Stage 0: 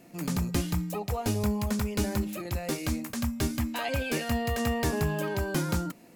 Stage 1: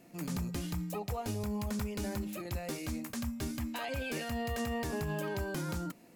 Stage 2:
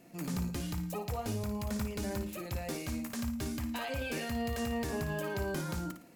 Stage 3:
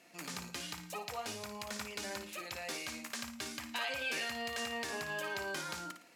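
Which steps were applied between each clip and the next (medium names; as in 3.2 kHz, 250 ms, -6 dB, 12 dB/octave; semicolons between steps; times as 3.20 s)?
peak limiter -22.5 dBFS, peak gain reduction 7 dB; trim -4.5 dB
flutter echo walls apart 9.6 m, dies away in 0.38 s
band-pass filter 3.1 kHz, Q 0.52; trim +5 dB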